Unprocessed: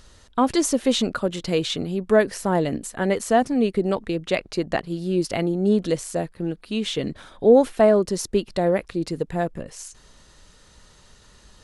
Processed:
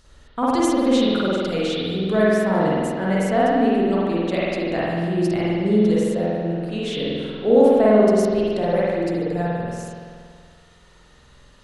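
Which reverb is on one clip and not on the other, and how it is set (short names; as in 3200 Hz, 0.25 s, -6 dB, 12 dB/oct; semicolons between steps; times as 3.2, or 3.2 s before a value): spring tank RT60 2 s, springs 47 ms, chirp 30 ms, DRR -7.5 dB; gain -6 dB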